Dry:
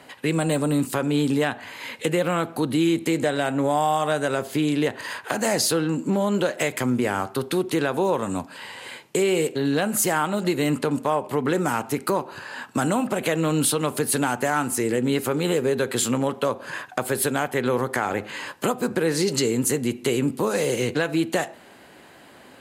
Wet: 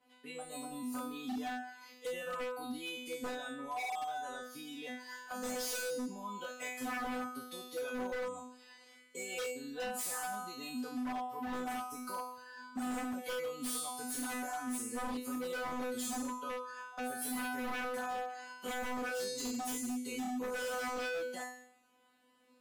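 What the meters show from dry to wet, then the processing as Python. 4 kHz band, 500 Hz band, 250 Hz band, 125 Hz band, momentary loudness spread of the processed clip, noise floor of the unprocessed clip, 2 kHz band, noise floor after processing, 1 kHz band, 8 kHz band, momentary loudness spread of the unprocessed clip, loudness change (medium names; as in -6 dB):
-14.0 dB, -18.0 dB, -17.0 dB, -33.0 dB, 8 LU, -49 dBFS, -12.5 dB, -65 dBFS, -12.5 dB, -14.0 dB, 6 LU, -16.0 dB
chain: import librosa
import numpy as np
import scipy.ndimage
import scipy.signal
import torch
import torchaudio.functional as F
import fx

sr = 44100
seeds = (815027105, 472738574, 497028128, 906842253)

y = fx.peak_eq(x, sr, hz=1800.0, db=-5.0, octaves=0.22)
y = fx.comb_fb(y, sr, f0_hz=250.0, decay_s=0.95, harmonics='all', damping=0.0, mix_pct=100)
y = fx.noise_reduce_blind(y, sr, reduce_db=9)
y = 10.0 ** (-39.5 / 20.0) * (np.abs((y / 10.0 ** (-39.5 / 20.0) + 3.0) % 4.0 - 2.0) - 1.0)
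y = F.gain(torch.from_numpy(y), 6.5).numpy()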